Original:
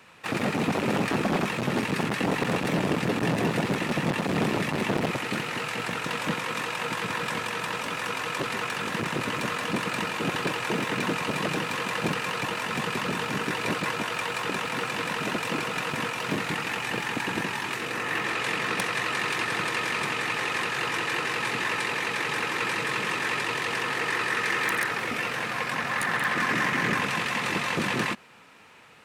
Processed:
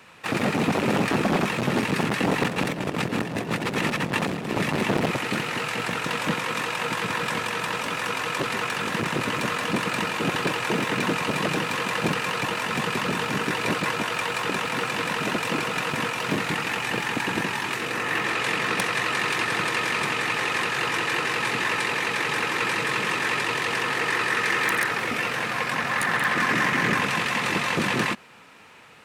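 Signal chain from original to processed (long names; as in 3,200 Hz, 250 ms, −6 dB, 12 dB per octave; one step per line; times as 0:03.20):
0:02.43–0:04.57: compressor whose output falls as the input rises −29 dBFS, ratio −0.5
level +3 dB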